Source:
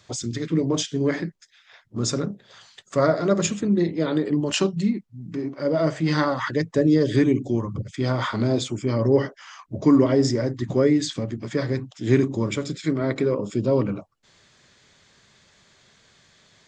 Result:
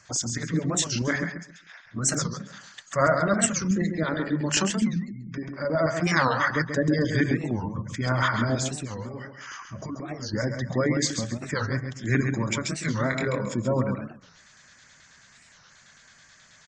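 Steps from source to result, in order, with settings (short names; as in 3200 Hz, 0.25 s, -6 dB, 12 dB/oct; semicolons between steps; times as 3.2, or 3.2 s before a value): 8.69–10.34 compressor 6:1, threshold -29 dBFS, peak gain reduction 16 dB; fifteen-band EQ 100 Hz -4 dB, 400 Hz -10 dB, 1600 Hz +7 dB, 6300 Hz +6 dB; LFO notch square 9.3 Hz 290–3600 Hz; spectral gate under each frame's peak -30 dB strong; 12.63–13.46 doubler 24 ms -6 dB; feedback echo 0.135 s, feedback 23%, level -7 dB; pops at 2.16, -21 dBFS; record warp 45 rpm, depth 250 cents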